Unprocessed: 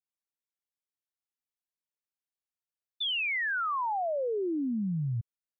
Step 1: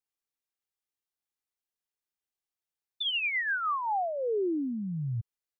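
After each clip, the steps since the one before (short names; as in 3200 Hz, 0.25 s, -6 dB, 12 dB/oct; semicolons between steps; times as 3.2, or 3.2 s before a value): comb 2.5 ms, depth 33%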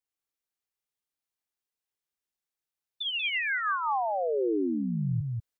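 in parallel at +2 dB: vocal rider within 4 dB; on the sum: echo 0.188 s -3 dB; gain -7 dB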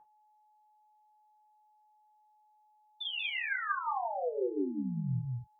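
whine 850 Hz -50 dBFS; reverb, pre-delay 3 ms, DRR 0.5 dB; gain -8.5 dB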